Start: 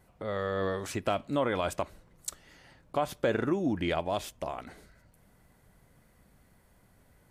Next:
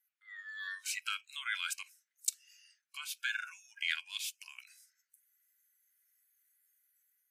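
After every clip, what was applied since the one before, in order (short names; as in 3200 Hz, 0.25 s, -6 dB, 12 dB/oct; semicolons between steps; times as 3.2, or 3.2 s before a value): spectral noise reduction 19 dB; AGC gain up to 4 dB; steep high-pass 1500 Hz 48 dB/oct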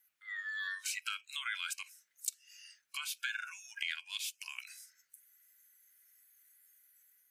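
compressor 3:1, threshold -47 dBFS, peak gain reduction 15 dB; gain +8.5 dB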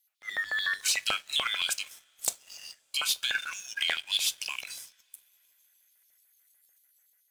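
LFO high-pass square 6.8 Hz 660–3800 Hz; two-slope reverb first 0.24 s, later 4.4 s, from -20 dB, DRR 13 dB; sample leveller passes 2; gain +2.5 dB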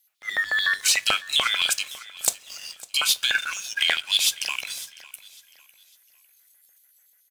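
feedback echo 0.553 s, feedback 34%, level -19.5 dB; gain +7 dB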